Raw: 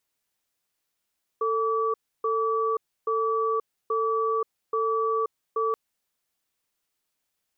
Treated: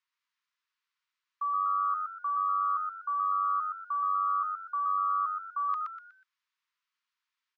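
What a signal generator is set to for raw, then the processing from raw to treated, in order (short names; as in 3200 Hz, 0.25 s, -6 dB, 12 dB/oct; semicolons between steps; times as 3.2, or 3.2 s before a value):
cadence 446 Hz, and 1150 Hz, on 0.53 s, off 0.30 s, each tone -25 dBFS 4.33 s
Chebyshev high-pass 920 Hz, order 10; air absorption 190 m; frequency-shifting echo 0.122 s, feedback 33%, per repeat +95 Hz, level -3.5 dB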